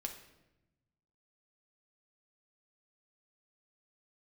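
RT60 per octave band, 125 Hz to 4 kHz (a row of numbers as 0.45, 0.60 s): 1.7, 1.4, 1.1, 0.85, 0.85, 0.70 s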